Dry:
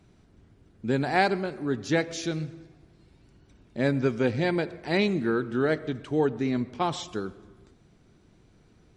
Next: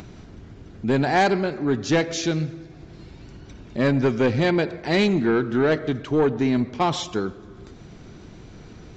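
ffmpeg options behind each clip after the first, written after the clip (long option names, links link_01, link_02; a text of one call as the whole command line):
ffmpeg -i in.wav -af "aresample=16000,asoftclip=type=tanh:threshold=-20dB,aresample=44100,acompressor=mode=upward:threshold=-40dB:ratio=2.5,volume=7.5dB" out.wav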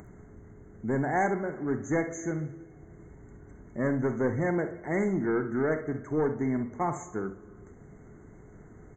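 ffmpeg -i in.wav -af "afftfilt=real='re*(1-between(b*sr/4096,2200,6100))':imag='im*(1-between(b*sr/4096,2200,6100))':win_size=4096:overlap=0.75,aeval=exprs='val(0)+0.00251*sin(2*PI*420*n/s)':channel_layout=same,aecho=1:1:46|67:0.237|0.237,volume=-8dB" out.wav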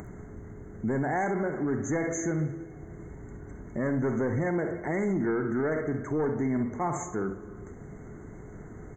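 ffmpeg -i in.wav -af "alimiter=level_in=4dB:limit=-24dB:level=0:latency=1:release=51,volume=-4dB,volume=6.5dB" out.wav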